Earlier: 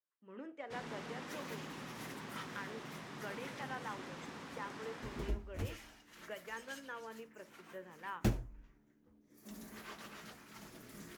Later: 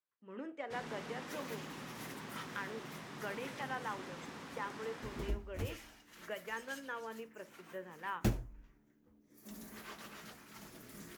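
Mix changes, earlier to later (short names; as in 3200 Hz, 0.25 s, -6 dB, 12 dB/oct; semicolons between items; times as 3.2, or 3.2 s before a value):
speech +3.5 dB; master: add high shelf 11000 Hz +5.5 dB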